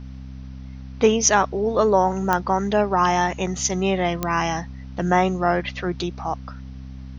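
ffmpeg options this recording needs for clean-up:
-af "adeclick=t=4,bandreject=f=65.4:t=h:w=4,bandreject=f=130.8:t=h:w=4,bandreject=f=196.2:t=h:w=4,bandreject=f=261.6:t=h:w=4,agate=range=0.0891:threshold=0.0355"

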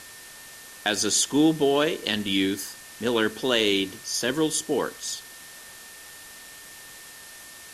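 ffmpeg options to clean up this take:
-af "adeclick=t=4,bandreject=f=1800:w=30,afwtdn=0.0071"

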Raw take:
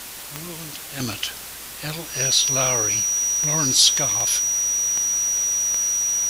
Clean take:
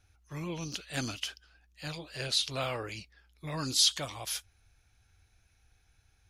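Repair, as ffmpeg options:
-af "adeclick=t=4,bandreject=f=5800:w=30,afwtdn=0.018,asetnsamples=n=441:p=0,asendcmd='1 volume volume -9dB',volume=1"

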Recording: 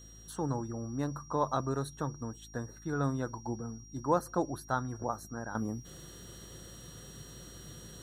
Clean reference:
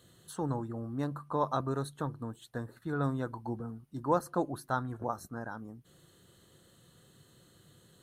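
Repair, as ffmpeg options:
-af "bandreject=f=53.9:t=h:w=4,bandreject=f=107.8:t=h:w=4,bandreject=f=161.7:t=h:w=4,bandreject=f=215.6:t=h:w=4,bandreject=f=269.5:t=h:w=4,bandreject=f=323.4:t=h:w=4,bandreject=f=5700:w=30,asetnsamples=n=441:p=0,asendcmd='5.55 volume volume -10.5dB',volume=1"

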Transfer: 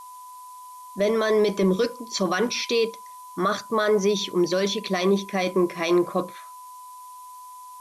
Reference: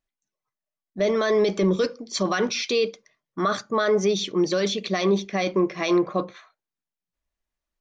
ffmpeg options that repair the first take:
-af "bandreject=f=1000:w=30,afftdn=nr=30:nf=-43"

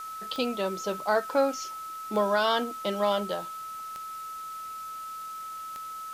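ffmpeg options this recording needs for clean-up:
-af "adeclick=t=4,bandreject=f=1300:w=30,afwtdn=0.0032"

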